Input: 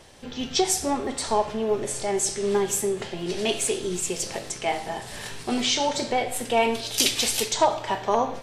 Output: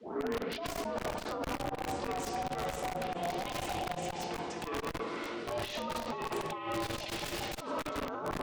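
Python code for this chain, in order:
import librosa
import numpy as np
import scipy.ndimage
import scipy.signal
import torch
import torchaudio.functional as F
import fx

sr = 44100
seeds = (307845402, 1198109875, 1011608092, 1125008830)

p1 = fx.tape_start_head(x, sr, length_s=0.71)
p2 = fx.quant_dither(p1, sr, seeds[0], bits=8, dither='triangular')
p3 = p1 + (p2 * 10.0 ** (-12.0 / 20.0))
p4 = scipy.signal.sosfilt(scipy.signal.butter(2, 4000.0, 'lowpass', fs=sr, output='sos'), p3)
p5 = p4 * np.sin(2.0 * np.pi * 350.0 * np.arange(len(p4)) / sr)
p6 = scipy.signal.sosfilt(scipy.signal.butter(2, 290.0, 'highpass', fs=sr, output='sos'), p5)
p7 = fx.room_shoebox(p6, sr, seeds[1], volume_m3=3900.0, walls='mixed', distance_m=1.5)
p8 = fx.over_compress(p7, sr, threshold_db=-30.0, ratio=-1.0)
p9 = p8 + 10.0 ** (-18.5 / 20.0) * np.pad(p8, (int(400 * sr / 1000.0), 0))[:len(p8)]
p10 = (np.mod(10.0 ** (22.0 / 20.0) * p9 + 1.0, 2.0) - 1.0) / 10.0 ** (22.0 / 20.0)
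p11 = fx.tilt_eq(p10, sr, slope=-2.0)
p12 = fx.transformer_sat(p11, sr, knee_hz=290.0)
y = p12 * 10.0 ** (-4.5 / 20.0)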